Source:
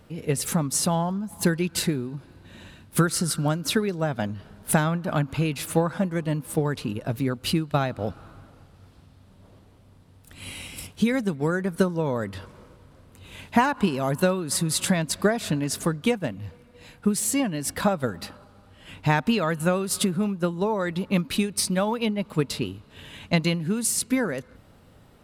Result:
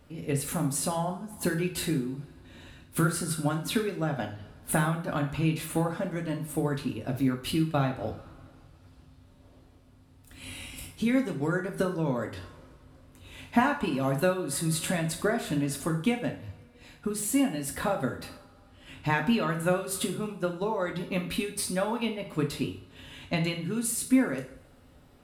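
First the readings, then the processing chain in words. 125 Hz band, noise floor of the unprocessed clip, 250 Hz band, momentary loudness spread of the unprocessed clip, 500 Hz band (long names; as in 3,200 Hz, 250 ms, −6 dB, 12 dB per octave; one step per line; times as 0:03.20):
−4.5 dB, −54 dBFS, −3.5 dB, 11 LU, −4.0 dB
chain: dynamic equaliser 5,600 Hz, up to −8 dB, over −46 dBFS, Q 1.6
coupled-rooms reverb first 0.47 s, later 1.8 s, from −26 dB, DRR 2 dB
level −5.5 dB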